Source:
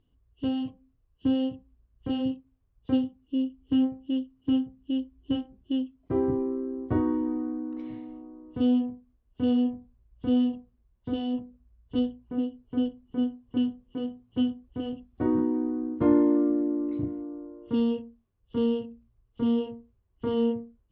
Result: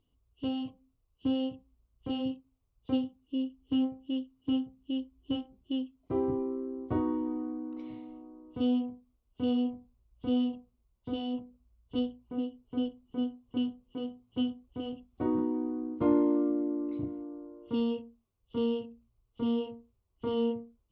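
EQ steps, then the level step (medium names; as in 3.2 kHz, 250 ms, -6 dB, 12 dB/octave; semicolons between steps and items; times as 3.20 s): bass shelf 470 Hz -6.5 dB; peaking EQ 1.7 kHz -13.5 dB 0.3 oct; 0.0 dB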